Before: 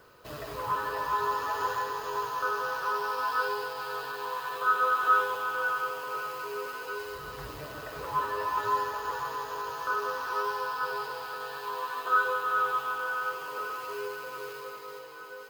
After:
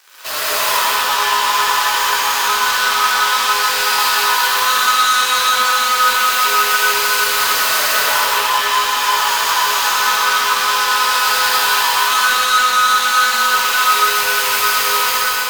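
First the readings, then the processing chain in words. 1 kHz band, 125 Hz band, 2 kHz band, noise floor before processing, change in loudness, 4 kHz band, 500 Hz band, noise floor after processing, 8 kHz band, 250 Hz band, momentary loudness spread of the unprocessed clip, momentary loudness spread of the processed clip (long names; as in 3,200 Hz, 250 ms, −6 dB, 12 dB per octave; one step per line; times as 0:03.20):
+15.0 dB, can't be measured, +18.0 dB, −43 dBFS, +17.5 dB, +29.0 dB, +8.0 dB, −18 dBFS, +32.5 dB, +10.5 dB, 14 LU, 2 LU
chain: fade-out on the ending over 2.42 s
camcorder AGC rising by 25 dB per second
leveller curve on the samples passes 5
high-pass filter 1,000 Hz 12 dB per octave
parametric band 9,400 Hz +7 dB 2.6 octaves
in parallel at −4.5 dB: asymmetric clip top −27 dBFS
on the sum: reverb whose tail is shaped and stops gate 450 ms flat, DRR −7.5 dB
level −8 dB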